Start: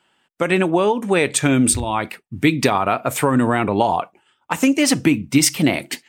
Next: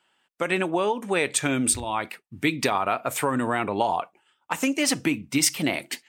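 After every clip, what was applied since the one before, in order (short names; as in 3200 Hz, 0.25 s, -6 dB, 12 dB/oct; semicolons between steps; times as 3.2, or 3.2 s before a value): low shelf 330 Hz -8 dB; gain -4.5 dB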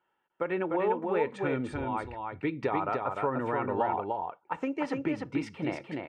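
LPF 1400 Hz 12 dB/oct; comb 2.2 ms, depth 37%; on a send: echo 0.299 s -4 dB; on the sum: gain -5.5 dB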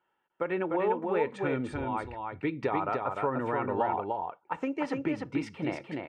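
nothing audible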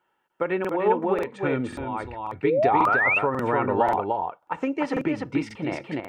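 painted sound rise, 2.44–3.19, 390–2800 Hz -26 dBFS; random-step tremolo; crackling interface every 0.54 s, samples 2048, repeat, from 0.6; gain +7.5 dB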